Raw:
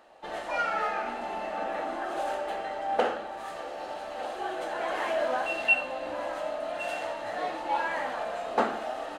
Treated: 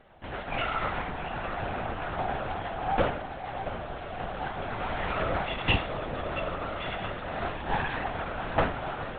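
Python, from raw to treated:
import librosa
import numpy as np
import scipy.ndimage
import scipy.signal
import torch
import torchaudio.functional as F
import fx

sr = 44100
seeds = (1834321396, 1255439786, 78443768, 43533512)

y = fx.lower_of_two(x, sr, delay_ms=3.8)
y = fx.low_shelf(y, sr, hz=210.0, db=7.5)
y = fx.echo_feedback(y, sr, ms=677, feedback_pct=51, wet_db=-11)
y = fx.lpc_vocoder(y, sr, seeds[0], excitation='whisper', order=10)
y = fx.doppler_dist(y, sr, depth_ms=0.21)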